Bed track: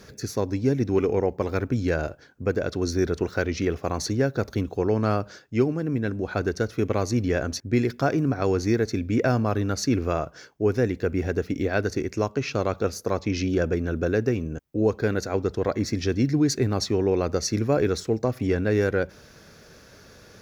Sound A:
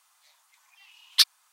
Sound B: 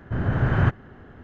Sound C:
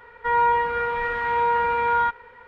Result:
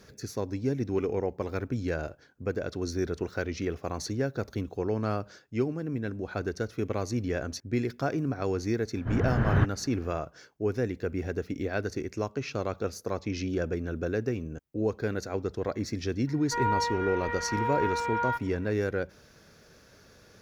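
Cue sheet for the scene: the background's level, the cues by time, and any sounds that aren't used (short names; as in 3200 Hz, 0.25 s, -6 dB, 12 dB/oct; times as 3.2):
bed track -6.5 dB
8.95 add B -4.5 dB
16.27 add C -8.5 dB
not used: A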